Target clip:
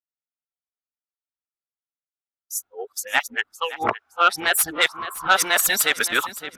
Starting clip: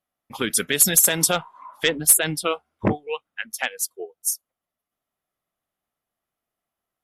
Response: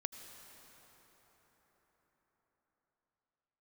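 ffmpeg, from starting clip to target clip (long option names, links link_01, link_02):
-filter_complex "[0:a]areverse,agate=range=-33dB:threshold=-46dB:ratio=3:detection=peak,aecho=1:1:605|1210|1815:0.158|0.0428|0.0116,acrossover=split=540|3000[link_01][link_02][link_03];[link_01]acompressor=threshold=-42dB:ratio=6[link_04];[link_04][link_02][link_03]amix=inputs=3:normalize=0,equalizer=frequency=11000:width=0.47:gain=-14.5,asoftclip=type=tanh:threshold=-14.5dB,equalizer=frequency=160:width_type=o:width=0.33:gain=-12,equalizer=frequency=500:width_type=o:width=0.33:gain=-6,equalizer=frequency=1250:width_type=o:width=0.33:gain=8,asetrate=47187,aresample=44100,volume=8dB"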